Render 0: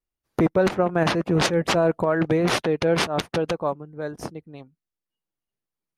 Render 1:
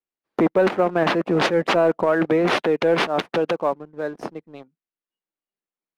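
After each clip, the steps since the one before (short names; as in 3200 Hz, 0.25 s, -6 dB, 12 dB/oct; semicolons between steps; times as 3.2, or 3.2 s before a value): three-band isolator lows -20 dB, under 190 Hz, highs -15 dB, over 3900 Hz; sample leveller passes 1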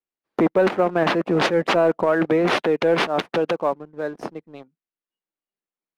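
nothing audible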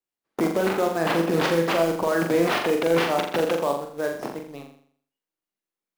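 limiter -15.5 dBFS, peak gain reduction 8 dB; short-mantissa float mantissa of 2-bit; flutter echo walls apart 7.2 m, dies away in 0.56 s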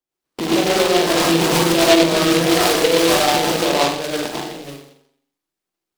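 phaser 0.53 Hz, delay 2.2 ms, feedback 31%; plate-style reverb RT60 0.59 s, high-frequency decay 0.9×, pre-delay 85 ms, DRR -6.5 dB; noise-modulated delay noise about 2900 Hz, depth 0.12 ms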